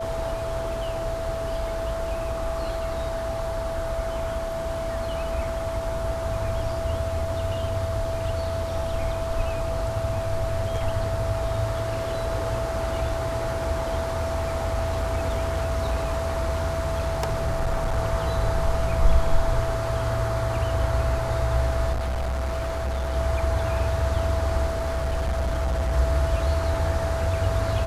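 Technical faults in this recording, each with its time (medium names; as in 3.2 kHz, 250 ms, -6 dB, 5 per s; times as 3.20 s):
whine 660 Hz -28 dBFS
14.04–17.99 s: clipped -20 dBFS
21.92–23.16 s: clipped -23.5 dBFS
24.67–25.93 s: clipped -21 dBFS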